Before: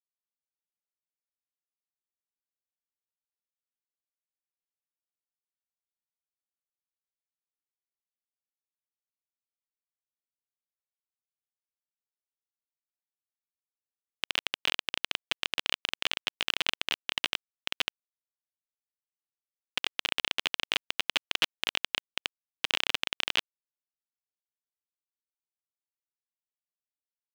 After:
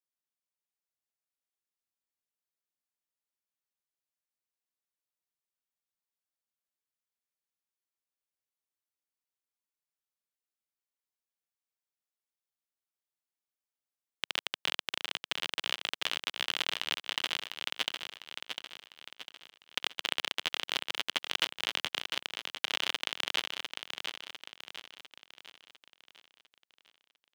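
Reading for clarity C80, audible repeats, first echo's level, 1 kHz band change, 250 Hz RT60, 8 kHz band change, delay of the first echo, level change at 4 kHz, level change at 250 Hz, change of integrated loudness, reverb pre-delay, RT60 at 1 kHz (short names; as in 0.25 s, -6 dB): none, 5, -6.5 dB, -0.5 dB, none, -0.5 dB, 0.701 s, -2.0 dB, -2.0 dB, -3.0 dB, none, none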